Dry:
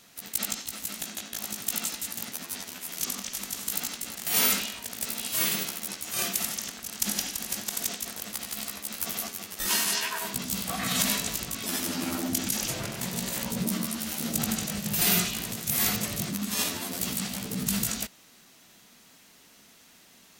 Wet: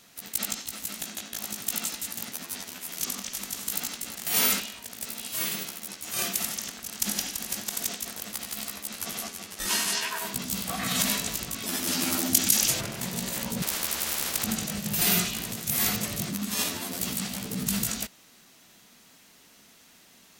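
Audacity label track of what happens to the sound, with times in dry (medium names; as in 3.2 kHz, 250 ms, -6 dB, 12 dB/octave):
4.600000	6.030000	gain -3.5 dB
8.870000	10.080000	low-pass 12 kHz
11.870000	12.810000	treble shelf 2.1 kHz +8.5 dB
13.620000	14.440000	spectrum-flattening compressor 10:1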